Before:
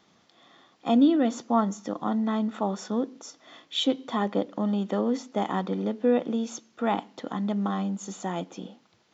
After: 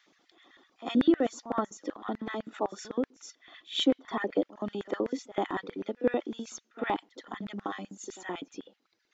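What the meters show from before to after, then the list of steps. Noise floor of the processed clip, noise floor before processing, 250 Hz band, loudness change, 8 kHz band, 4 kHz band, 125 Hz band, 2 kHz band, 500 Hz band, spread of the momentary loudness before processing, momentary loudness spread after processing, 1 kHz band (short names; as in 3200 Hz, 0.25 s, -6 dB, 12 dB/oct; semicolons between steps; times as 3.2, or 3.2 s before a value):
-76 dBFS, -64 dBFS, -6.0 dB, -5.0 dB, n/a, -2.5 dB, -12.5 dB, +1.0 dB, -3.5 dB, 11 LU, 15 LU, -5.5 dB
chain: reverb removal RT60 1.2 s; pre-echo 75 ms -18 dB; LFO high-pass square 7.9 Hz 320–1800 Hz; gain -3.5 dB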